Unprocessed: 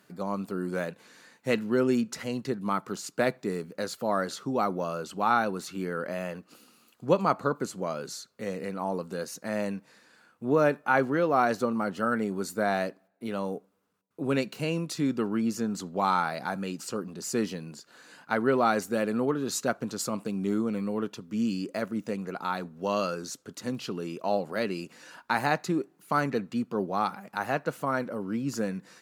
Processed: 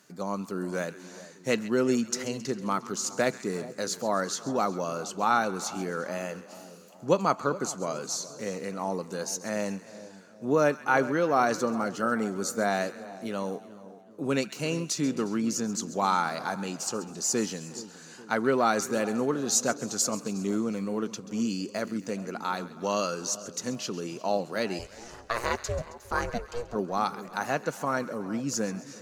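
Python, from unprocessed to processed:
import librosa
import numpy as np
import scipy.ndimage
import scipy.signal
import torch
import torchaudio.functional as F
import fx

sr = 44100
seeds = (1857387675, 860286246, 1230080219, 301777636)

p1 = fx.low_shelf(x, sr, hz=82.0, db=-7.0)
p2 = p1 + fx.echo_split(p1, sr, split_hz=1000.0, low_ms=421, high_ms=134, feedback_pct=52, wet_db=-16.0, dry=0)
p3 = fx.ring_mod(p2, sr, carrier_hz=240.0, at=(24.78, 26.74), fade=0.02)
p4 = fx.peak_eq(p3, sr, hz=6300.0, db=11.5, octaves=0.63)
y = fx.echo_warbled(p4, sr, ms=361, feedback_pct=31, rate_hz=2.8, cents=83, wet_db=-21.5)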